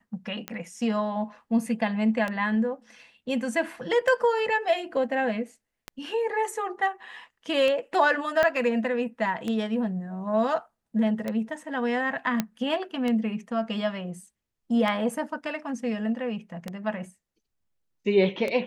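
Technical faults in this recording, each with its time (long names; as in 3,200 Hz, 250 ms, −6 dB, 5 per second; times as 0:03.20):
scratch tick 33 1/3 rpm −16 dBFS
0:08.43: click −11 dBFS
0:12.40: click −10 dBFS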